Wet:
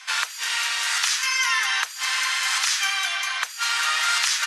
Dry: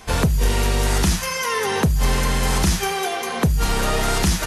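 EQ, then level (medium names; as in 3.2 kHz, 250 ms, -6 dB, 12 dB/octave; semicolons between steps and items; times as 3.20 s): high-pass 1.3 kHz 24 dB/octave; low-pass 6.9 kHz 12 dB/octave; +5.0 dB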